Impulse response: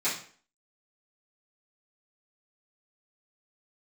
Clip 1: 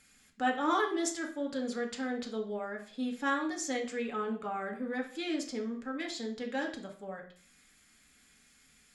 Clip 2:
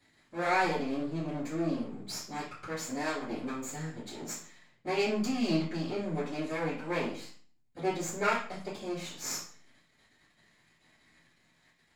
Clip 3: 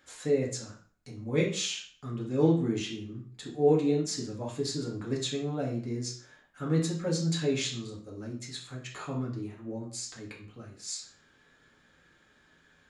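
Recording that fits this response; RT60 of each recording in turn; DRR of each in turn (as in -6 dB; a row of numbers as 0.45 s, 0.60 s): 2; 0.45 s, 0.45 s, 0.45 s; 1.0 dB, -14.0 dB, -4.5 dB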